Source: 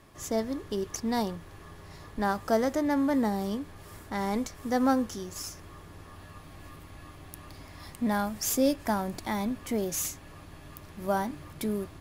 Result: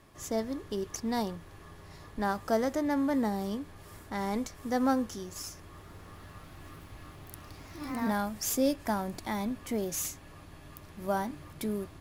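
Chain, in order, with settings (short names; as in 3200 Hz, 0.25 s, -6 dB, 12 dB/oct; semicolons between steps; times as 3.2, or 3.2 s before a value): 5.6–8.26 echoes that change speed 0.146 s, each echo +2 st, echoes 3, each echo -6 dB; gain -2.5 dB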